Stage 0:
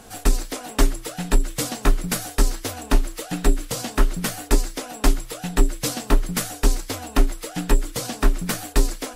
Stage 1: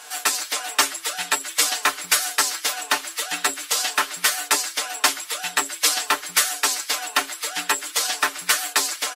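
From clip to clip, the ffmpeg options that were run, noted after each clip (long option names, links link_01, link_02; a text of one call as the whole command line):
ffmpeg -i in.wav -af "highpass=1200,highshelf=frequency=9100:gain=-5,aecho=1:1:6.7:0.69,volume=8.5dB" out.wav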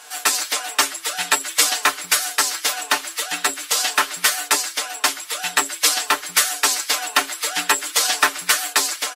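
ffmpeg -i in.wav -af "dynaudnorm=framelen=100:gausssize=5:maxgain=11.5dB,volume=-1dB" out.wav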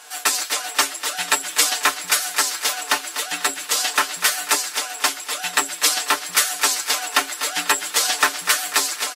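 ffmpeg -i in.wav -af "aecho=1:1:246|492|738|984:0.251|0.103|0.0422|0.0173,volume=-1dB" out.wav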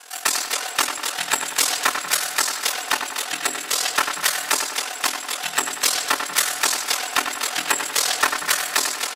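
ffmpeg -i in.wav -filter_complex "[0:a]aeval=exprs='0.841*sin(PI/2*1.41*val(0)/0.841)':channel_layout=same,aeval=exprs='val(0)*sin(2*PI*20*n/s)':channel_layout=same,asplit=2[link_01][link_02];[link_02]adelay=94,lowpass=frequency=3700:poles=1,volume=-6.5dB,asplit=2[link_03][link_04];[link_04]adelay=94,lowpass=frequency=3700:poles=1,volume=0.54,asplit=2[link_05][link_06];[link_06]adelay=94,lowpass=frequency=3700:poles=1,volume=0.54,asplit=2[link_07][link_08];[link_08]adelay=94,lowpass=frequency=3700:poles=1,volume=0.54,asplit=2[link_09][link_10];[link_10]adelay=94,lowpass=frequency=3700:poles=1,volume=0.54,asplit=2[link_11][link_12];[link_12]adelay=94,lowpass=frequency=3700:poles=1,volume=0.54,asplit=2[link_13][link_14];[link_14]adelay=94,lowpass=frequency=3700:poles=1,volume=0.54[link_15];[link_01][link_03][link_05][link_07][link_09][link_11][link_13][link_15]amix=inputs=8:normalize=0,volume=-5dB" out.wav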